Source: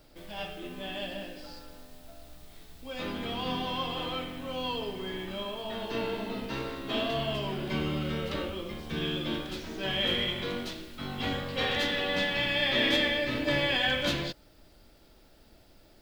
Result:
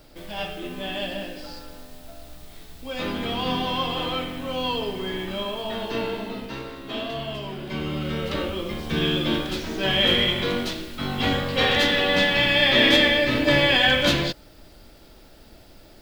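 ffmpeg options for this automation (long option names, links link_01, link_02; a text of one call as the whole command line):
ffmpeg -i in.wav -af "volume=16dB,afade=type=out:start_time=5.64:duration=0.99:silence=0.446684,afade=type=in:start_time=7.67:duration=1.2:silence=0.354813" out.wav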